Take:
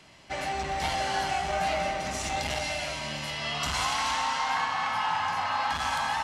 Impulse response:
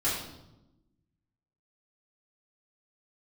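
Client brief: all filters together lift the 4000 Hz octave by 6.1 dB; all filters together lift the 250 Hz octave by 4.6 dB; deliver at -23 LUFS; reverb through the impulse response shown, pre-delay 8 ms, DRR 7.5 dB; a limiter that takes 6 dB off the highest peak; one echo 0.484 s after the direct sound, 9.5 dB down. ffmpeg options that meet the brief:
-filter_complex "[0:a]equalizer=f=250:t=o:g=6,equalizer=f=4k:t=o:g=8,alimiter=limit=-18.5dB:level=0:latency=1,aecho=1:1:484:0.335,asplit=2[a][b];[1:a]atrim=start_sample=2205,adelay=8[c];[b][c]afir=irnorm=-1:irlink=0,volume=-16.5dB[d];[a][d]amix=inputs=2:normalize=0,volume=3dB"

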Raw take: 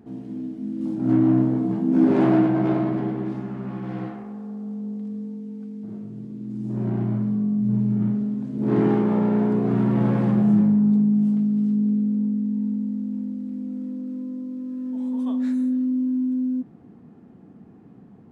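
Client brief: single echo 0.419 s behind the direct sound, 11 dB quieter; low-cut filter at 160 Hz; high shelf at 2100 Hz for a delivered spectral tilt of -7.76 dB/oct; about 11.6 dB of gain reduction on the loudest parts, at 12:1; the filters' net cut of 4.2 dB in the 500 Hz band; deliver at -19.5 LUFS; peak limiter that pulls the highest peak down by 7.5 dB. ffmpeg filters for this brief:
-af "highpass=160,equalizer=f=500:t=o:g=-7,highshelf=f=2.1k:g=8.5,acompressor=threshold=-28dB:ratio=12,alimiter=level_in=5dB:limit=-24dB:level=0:latency=1,volume=-5dB,aecho=1:1:419:0.282,volume=16dB"

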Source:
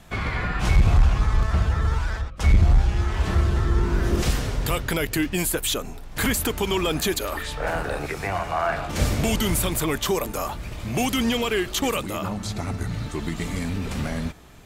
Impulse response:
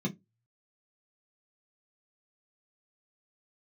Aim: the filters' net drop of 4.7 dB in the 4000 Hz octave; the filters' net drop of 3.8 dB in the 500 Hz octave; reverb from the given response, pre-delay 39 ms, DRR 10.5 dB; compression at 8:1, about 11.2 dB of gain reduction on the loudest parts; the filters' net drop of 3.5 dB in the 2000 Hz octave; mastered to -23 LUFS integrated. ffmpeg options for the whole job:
-filter_complex "[0:a]equalizer=f=500:t=o:g=-5,equalizer=f=2k:t=o:g=-3,equalizer=f=4k:t=o:g=-5,acompressor=threshold=-24dB:ratio=8,asplit=2[a][b];[1:a]atrim=start_sample=2205,adelay=39[c];[b][c]afir=irnorm=-1:irlink=0,volume=-13.5dB[d];[a][d]amix=inputs=2:normalize=0,volume=4dB"

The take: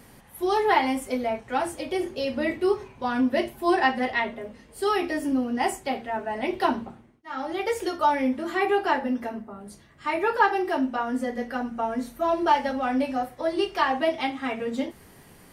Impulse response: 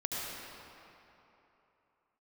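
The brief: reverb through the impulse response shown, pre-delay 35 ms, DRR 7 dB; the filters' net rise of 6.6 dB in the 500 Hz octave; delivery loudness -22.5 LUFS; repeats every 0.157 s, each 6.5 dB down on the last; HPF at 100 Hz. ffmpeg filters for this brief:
-filter_complex "[0:a]highpass=100,equalizer=f=500:t=o:g=9,aecho=1:1:157|314|471|628|785|942:0.473|0.222|0.105|0.0491|0.0231|0.0109,asplit=2[a][b];[1:a]atrim=start_sample=2205,adelay=35[c];[b][c]afir=irnorm=-1:irlink=0,volume=-12dB[d];[a][d]amix=inputs=2:normalize=0,volume=-2dB"

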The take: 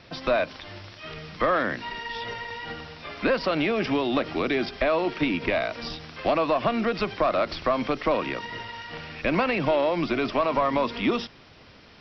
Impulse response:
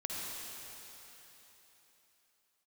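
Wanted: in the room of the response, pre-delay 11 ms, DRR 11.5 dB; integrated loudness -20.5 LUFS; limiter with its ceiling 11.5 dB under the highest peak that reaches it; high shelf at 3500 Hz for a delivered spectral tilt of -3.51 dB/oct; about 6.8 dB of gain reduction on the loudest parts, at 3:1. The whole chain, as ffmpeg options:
-filter_complex "[0:a]highshelf=f=3.5k:g=-7,acompressor=threshold=-28dB:ratio=3,alimiter=level_in=4dB:limit=-24dB:level=0:latency=1,volume=-4dB,asplit=2[a][b];[1:a]atrim=start_sample=2205,adelay=11[c];[b][c]afir=irnorm=-1:irlink=0,volume=-14.5dB[d];[a][d]amix=inputs=2:normalize=0,volume=16.5dB"

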